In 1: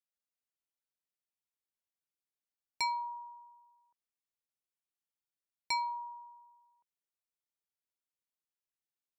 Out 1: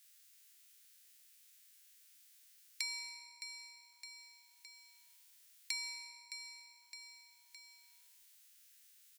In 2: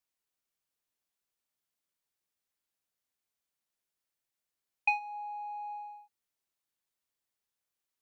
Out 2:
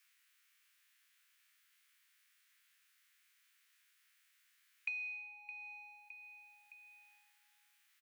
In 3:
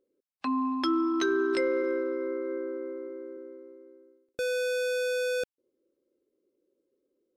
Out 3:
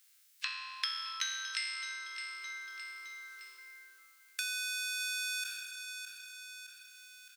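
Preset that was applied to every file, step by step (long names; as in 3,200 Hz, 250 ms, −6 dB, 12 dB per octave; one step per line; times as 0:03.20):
peak hold with a decay on every bin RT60 0.91 s
high-shelf EQ 3,600 Hz +7.5 dB
downward compressor, threshold −27 dBFS
inverse Chebyshev high-pass filter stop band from 610 Hz, stop band 50 dB
on a send: repeating echo 614 ms, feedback 28%, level −17 dB
on the sum: multiband upward and downward compressor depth 70%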